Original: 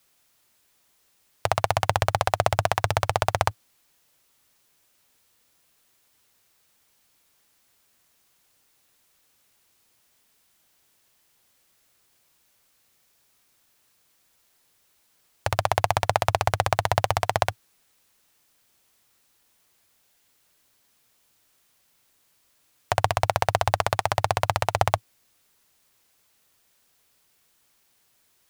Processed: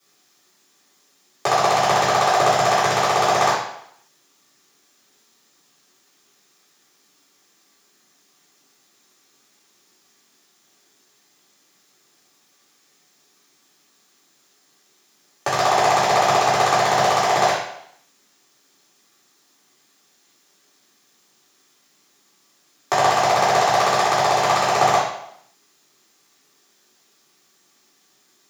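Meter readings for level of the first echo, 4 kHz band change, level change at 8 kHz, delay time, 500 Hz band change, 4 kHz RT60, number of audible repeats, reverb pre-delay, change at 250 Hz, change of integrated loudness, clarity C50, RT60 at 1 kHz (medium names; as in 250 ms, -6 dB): no echo, +8.0 dB, +8.5 dB, no echo, +6.5 dB, 0.70 s, no echo, 3 ms, +9.5 dB, +7.0 dB, 3.0 dB, 0.75 s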